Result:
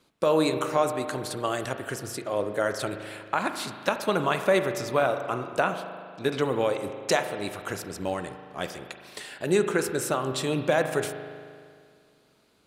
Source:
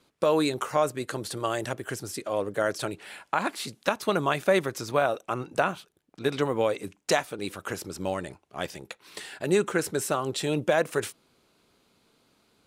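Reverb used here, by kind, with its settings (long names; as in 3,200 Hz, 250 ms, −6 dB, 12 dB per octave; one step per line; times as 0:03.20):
spring reverb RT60 2.1 s, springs 38 ms, chirp 35 ms, DRR 7.5 dB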